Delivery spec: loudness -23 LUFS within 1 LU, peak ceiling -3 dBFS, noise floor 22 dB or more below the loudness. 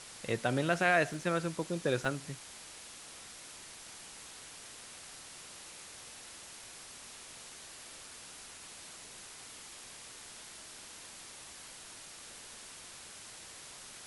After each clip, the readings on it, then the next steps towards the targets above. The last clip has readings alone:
dropouts 2; longest dropout 1.2 ms; noise floor -51 dBFS; noise floor target -62 dBFS; loudness -39.5 LUFS; peak level -13.5 dBFS; loudness target -23.0 LUFS
-> interpolate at 1.14/2.05 s, 1.2 ms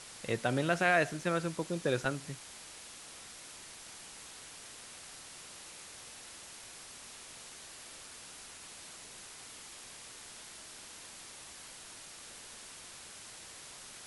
dropouts 0; noise floor -51 dBFS; noise floor target -62 dBFS
-> noise reduction 11 dB, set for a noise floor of -51 dBFS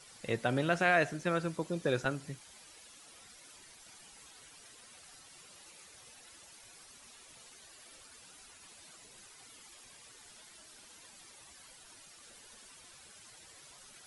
noise floor -57 dBFS; loudness -32.5 LUFS; peak level -13.5 dBFS; loudness target -23.0 LUFS
-> trim +9.5 dB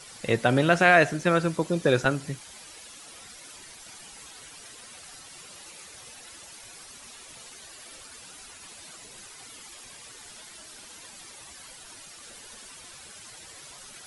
loudness -23.0 LUFS; peak level -4.0 dBFS; noise floor -47 dBFS

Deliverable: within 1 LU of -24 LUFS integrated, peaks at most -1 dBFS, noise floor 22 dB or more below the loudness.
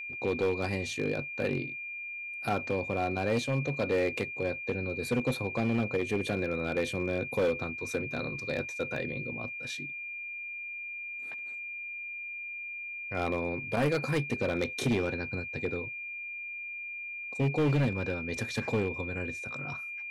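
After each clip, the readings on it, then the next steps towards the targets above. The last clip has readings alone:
clipped samples 1.5%; clipping level -22.5 dBFS; steady tone 2.4 kHz; tone level -37 dBFS; loudness -32.5 LUFS; peak level -22.5 dBFS; loudness target -24.0 LUFS
-> clip repair -22.5 dBFS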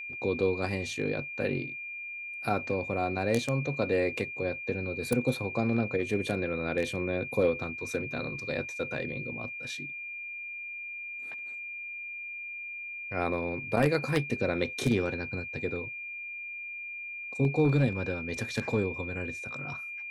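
clipped samples 0.0%; steady tone 2.4 kHz; tone level -37 dBFS
-> band-stop 2.4 kHz, Q 30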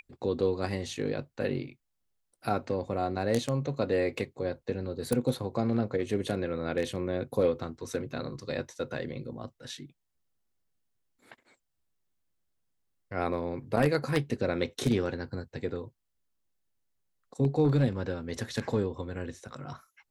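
steady tone not found; loudness -31.5 LUFS; peak level -13.0 dBFS; loudness target -24.0 LUFS
-> trim +7.5 dB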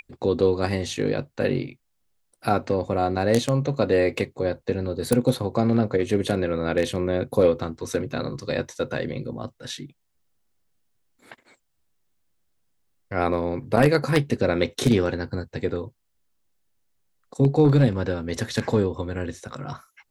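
loudness -24.0 LUFS; peak level -5.5 dBFS; noise floor -72 dBFS

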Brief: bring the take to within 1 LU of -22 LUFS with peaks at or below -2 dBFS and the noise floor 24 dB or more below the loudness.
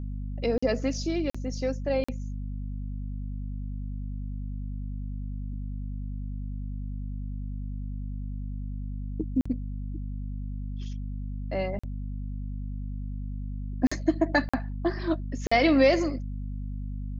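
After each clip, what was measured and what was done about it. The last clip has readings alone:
dropouts 8; longest dropout 45 ms; hum 50 Hz; highest harmonic 250 Hz; hum level -31 dBFS; loudness -31.0 LUFS; peak level -10.5 dBFS; loudness target -22.0 LUFS
-> interpolate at 0.58/1.30/2.04/9.41/11.79/13.87/14.49/15.47 s, 45 ms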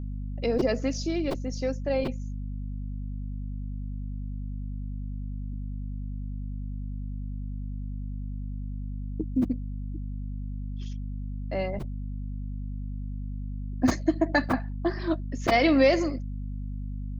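dropouts 0; hum 50 Hz; highest harmonic 250 Hz; hum level -31 dBFS
-> hum notches 50/100/150/200/250 Hz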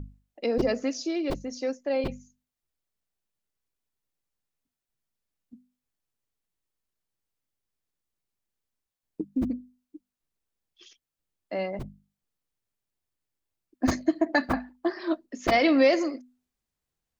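hum not found; loudness -27.5 LUFS; peak level -10.5 dBFS; loudness target -22.0 LUFS
-> trim +5.5 dB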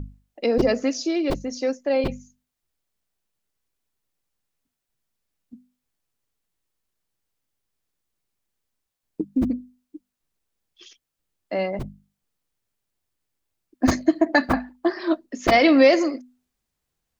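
loudness -22.0 LUFS; peak level -5.0 dBFS; noise floor -82 dBFS

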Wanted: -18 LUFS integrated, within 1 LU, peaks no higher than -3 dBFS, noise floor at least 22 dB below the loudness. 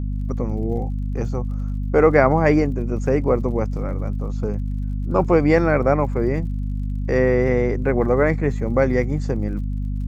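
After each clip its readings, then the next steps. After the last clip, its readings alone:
tick rate 52 per s; hum 50 Hz; highest harmonic 250 Hz; hum level -22 dBFS; loudness -21.0 LUFS; peak level -1.5 dBFS; loudness target -18.0 LUFS
-> de-click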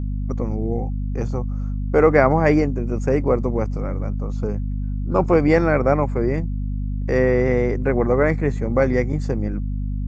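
tick rate 0 per s; hum 50 Hz; highest harmonic 250 Hz; hum level -22 dBFS
-> hum notches 50/100/150/200/250 Hz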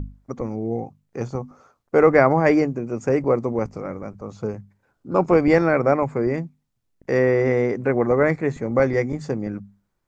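hum not found; loudness -21.0 LUFS; peak level -1.5 dBFS; loudness target -18.0 LUFS
-> trim +3 dB; peak limiter -3 dBFS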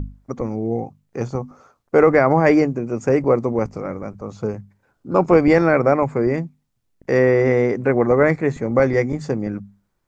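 loudness -18.5 LUFS; peak level -3.0 dBFS; noise floor -70 dBFS

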